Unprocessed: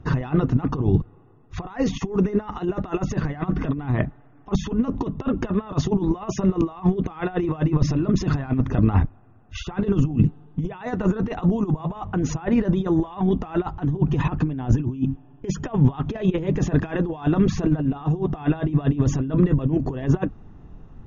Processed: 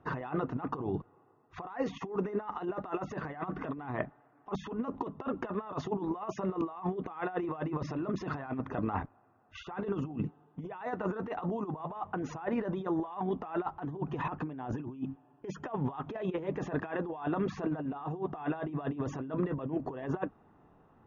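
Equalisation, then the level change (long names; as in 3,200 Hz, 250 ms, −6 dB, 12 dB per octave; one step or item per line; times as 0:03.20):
resonant band-pass 940 Hz, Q 0.79
−4.0 dB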